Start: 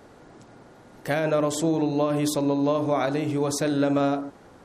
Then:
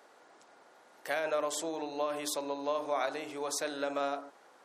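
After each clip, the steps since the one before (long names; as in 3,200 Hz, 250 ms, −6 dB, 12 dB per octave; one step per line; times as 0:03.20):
high-pass filter 620 Hz 12 dB per octave
level −5 dB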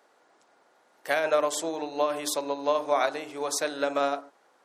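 expander for the loud parts 1.5 to 1, over −53 dBFS
level +9 dB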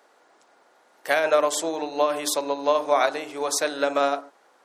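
high-pass filter 180 Hz 6 dB per octave
level +4.5 dB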